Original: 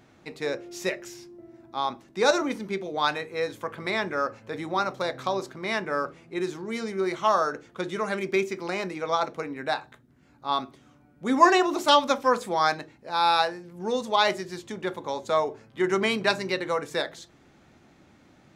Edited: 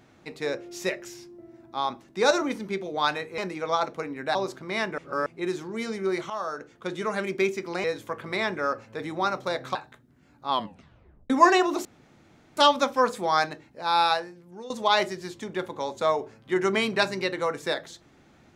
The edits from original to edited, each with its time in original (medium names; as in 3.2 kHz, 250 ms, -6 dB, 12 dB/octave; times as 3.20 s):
3.38–5.29 s: swap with 8.78–9.75 s
5.92–6.20 s: reverse
7.24–7.93 s: fade in, from -13.5 dB
10.50 s: tape stop 0.80 s
11.85 s: insert room tone 0.72 s
13.29–13.98 s: fade out, to -17 dB